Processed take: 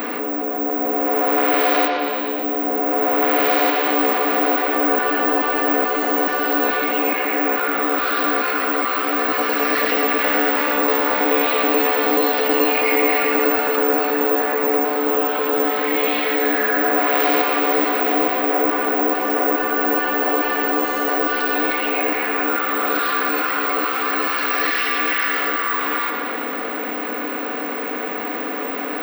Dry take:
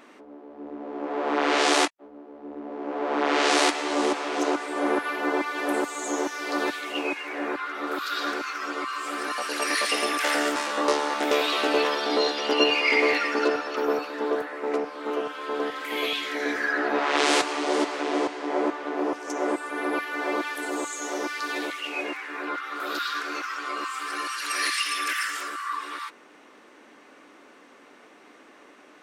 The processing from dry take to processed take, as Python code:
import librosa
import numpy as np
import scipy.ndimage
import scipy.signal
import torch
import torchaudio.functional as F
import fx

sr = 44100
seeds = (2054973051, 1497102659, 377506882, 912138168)

p1 = fx.bin_compress(x, sr, power=0.6)
p2 = scipy.signal.sosfilt(scipy.signal.butter(2, 170.0, 'highpass', fs=sr, output='sos'), p1)
p3 = fx.spacing_loss(p2, sr, db_at_10k=27)
p4 = (np.kron(p3[::2], np.eye(2)[0]) * 2)[:len(p3)]
p5 = fx.high_shelf(p4, sr, hz=5700.0, db=-4.5)
p6 = p5 + 0.68 * np.pad(p5, (int(4.1 * sr / 1000.0), 0))[:len(p5)]
p7 = p6 + fx.echo_bbd(p6, sr, ms=117, stages=4096, feedback_pct=72, wet_db=-9.0, dry=0)
y = fx.env_flatten(p7, sr, amount_pct=50)